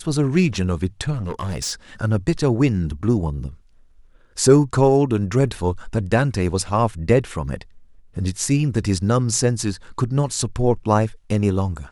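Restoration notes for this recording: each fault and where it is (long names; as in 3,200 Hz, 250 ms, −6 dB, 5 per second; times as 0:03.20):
0:01.12–0:01.73: clipping −21.5 dBFS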